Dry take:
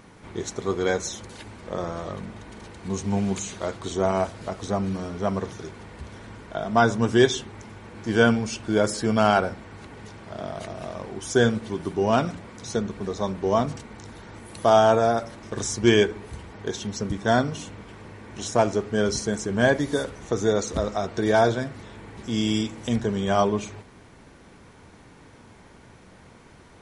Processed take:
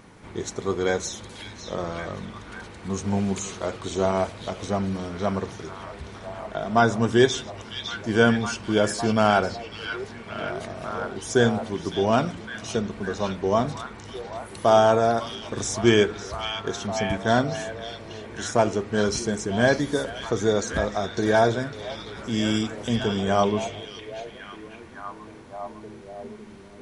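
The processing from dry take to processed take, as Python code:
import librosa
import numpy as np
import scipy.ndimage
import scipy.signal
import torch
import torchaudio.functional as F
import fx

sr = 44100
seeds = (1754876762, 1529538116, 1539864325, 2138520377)

y = fx.echo_stepped(x, sr, ms=557, hz=3500.0, octaves=-0.7, feedback_pct=70, wet_db=-3.0)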